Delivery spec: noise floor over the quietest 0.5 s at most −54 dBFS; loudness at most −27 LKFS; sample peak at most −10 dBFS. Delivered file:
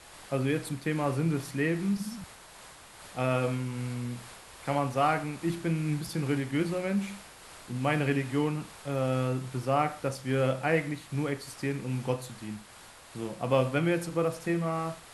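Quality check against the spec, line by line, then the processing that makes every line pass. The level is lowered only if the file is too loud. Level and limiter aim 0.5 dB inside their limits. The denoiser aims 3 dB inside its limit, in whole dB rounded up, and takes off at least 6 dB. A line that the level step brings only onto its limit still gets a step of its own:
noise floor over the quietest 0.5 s −51 dBFS: out of spec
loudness −30.5 LKFS: in spec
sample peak −11.0 dBFS: in spec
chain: broadband denoise 6 dB, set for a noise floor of −51 dBFS

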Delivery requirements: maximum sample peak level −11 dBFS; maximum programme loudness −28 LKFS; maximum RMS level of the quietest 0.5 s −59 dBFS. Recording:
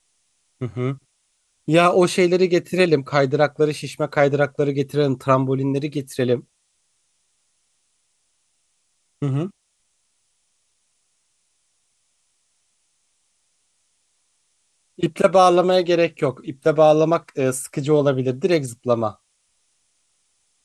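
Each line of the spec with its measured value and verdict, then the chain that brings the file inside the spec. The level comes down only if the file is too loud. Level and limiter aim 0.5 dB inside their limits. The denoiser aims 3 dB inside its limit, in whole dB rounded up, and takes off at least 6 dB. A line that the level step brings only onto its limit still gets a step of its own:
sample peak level −2.5 dBFS: out of spec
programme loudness −19.5 LKFS: out of spec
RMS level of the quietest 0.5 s −69 dBFS: in spec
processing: level −9 dB

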